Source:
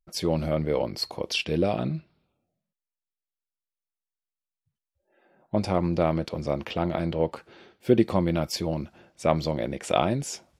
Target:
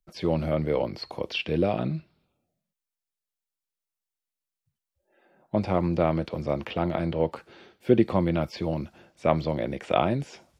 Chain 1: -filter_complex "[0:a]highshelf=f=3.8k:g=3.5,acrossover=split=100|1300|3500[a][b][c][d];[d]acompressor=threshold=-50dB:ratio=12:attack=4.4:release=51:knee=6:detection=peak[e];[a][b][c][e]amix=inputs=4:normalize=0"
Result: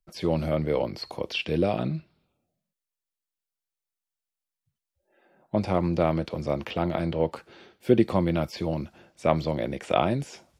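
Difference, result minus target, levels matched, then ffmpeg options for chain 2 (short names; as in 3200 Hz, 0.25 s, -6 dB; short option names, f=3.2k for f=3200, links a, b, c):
compressor: peak gain reduction -9 dB
-filter_complex "[0:a]highshelf=f=3.8k:g=3.5,acrossover=split=100|1300|3500[a][b][c][d];[d]acompressor=threshold=-60dB:ratio=12:attack=4.4:release=51:knee=6:detection=peak[e];[a][b][c][e]amix=inputs=4:normalize=0"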